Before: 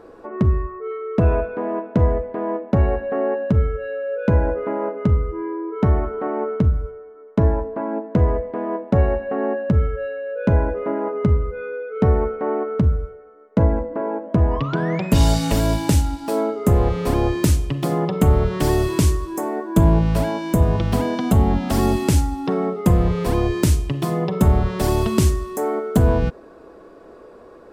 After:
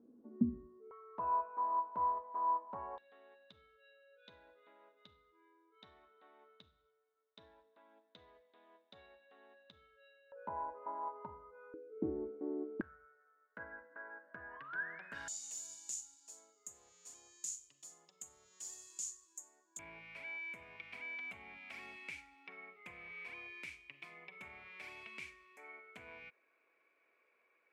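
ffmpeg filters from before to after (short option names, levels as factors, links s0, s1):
-af "asetnsamples=n=441:p=0,asendcmd='0.91 bandpass f 990;2.98 bandpass f 3700;10.32 bandpass f 940;11.74 bandpass f 320;12.81 bandpass f 1600;15.28 bandpass f 6900;19.79 bandpass f 2300',bandpass=f=240:t=q:w=18:csg=0"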